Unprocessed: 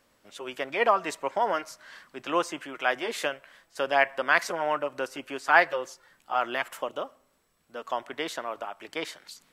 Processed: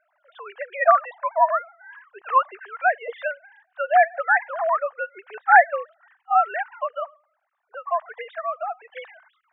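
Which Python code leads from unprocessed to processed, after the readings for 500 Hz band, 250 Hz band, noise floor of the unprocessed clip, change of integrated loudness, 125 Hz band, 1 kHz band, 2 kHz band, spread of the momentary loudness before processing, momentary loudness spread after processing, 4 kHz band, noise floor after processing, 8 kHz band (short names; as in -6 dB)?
+4.0 dB, under -20 dB, -69 dBFS, +6.0 dB, under -35 dB, +8.0 dB, +4.0 dB, 18 LU, 19 LU, under -10 dB, -72 dBFS, under -35 dB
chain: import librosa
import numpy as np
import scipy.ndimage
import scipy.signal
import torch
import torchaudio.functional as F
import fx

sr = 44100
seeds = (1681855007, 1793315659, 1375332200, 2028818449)

y = fx.sine_speech(x, sr)
y = fx.band_shelf(y, sr, hz=1100.0, db=10.5, octaves=1.7)
y = y * 10.0 ** (-3.0 / 20.0)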